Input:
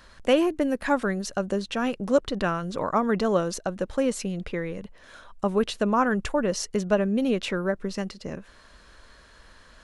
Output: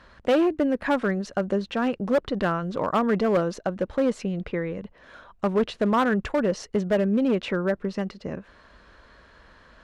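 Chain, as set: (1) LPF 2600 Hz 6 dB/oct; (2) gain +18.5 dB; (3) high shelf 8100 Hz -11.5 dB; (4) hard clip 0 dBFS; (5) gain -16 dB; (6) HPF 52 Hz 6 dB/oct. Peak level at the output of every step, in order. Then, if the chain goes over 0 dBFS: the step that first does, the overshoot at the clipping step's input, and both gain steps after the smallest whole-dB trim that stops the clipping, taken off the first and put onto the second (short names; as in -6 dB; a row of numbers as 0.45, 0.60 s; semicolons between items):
-9.0, +9.5, +9.5, 0.0, -16.0, -14.0 dBFS; step 2, 9.5 dB; step 2 +8.5 dB, step 5 -6 dB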